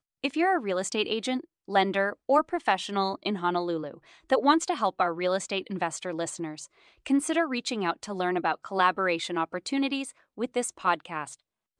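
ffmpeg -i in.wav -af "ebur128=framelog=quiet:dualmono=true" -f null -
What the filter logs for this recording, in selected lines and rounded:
Integrated loudness:
  I:         -25.0 LUFS
  Threshold: -35.3 LUFS
Loudness range:
  LRA:         2.6 LU
  Threshold: -45.1 LUFS
  LRA low:   -26.5 LUFS
  LRA high:  -23.9 LUFS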